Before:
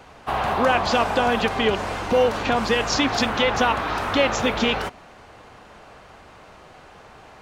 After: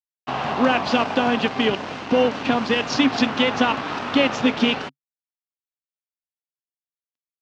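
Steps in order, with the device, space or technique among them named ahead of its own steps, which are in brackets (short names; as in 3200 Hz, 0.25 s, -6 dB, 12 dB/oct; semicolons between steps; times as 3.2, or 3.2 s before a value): blown loudspeaker (crossover distortion -33 dBFS; speaker cabinet 130–5900 Hz, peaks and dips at 140 Hz +8 dB, 260 Hz +10 dB, 2800 Hz +4 dB)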